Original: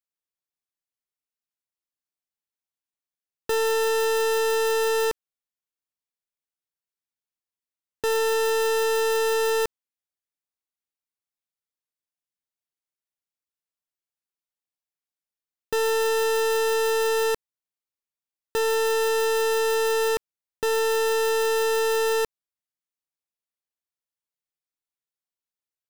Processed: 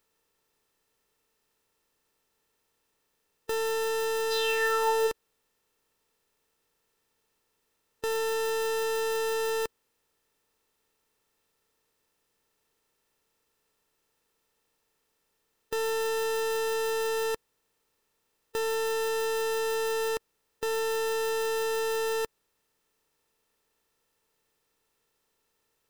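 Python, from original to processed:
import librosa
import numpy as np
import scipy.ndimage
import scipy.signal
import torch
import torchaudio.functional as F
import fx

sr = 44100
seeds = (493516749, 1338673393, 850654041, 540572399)

y = fx.bin_compress(x, sr, power=0.6)
y = fx.peak_eq(y, sr, hz=fx.line((4.3, 4800.0), (5.06, 540.0)), db=15.0, octaves=0.55, at=(4.3, 5.06), fade=0.02)
y = y * librosa.db_to_amplitude(-6.5)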